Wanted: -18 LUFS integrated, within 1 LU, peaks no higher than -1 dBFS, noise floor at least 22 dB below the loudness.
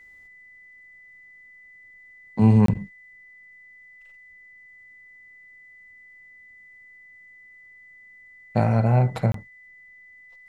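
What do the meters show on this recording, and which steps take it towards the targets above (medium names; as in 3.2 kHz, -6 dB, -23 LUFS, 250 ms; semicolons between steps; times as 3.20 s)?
dropouts 2; longest dropout 23 ms; steady tone 2 kHz; tone level -47 dBFS; loudness -21.5 LUFS; peak level -7.5 dBFS; loudness target -18.0 LUFS
-> interpolate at 2.66/9.32 s, 23 ms; band-stop 2 kHz, Q 30; trim +3.5 dB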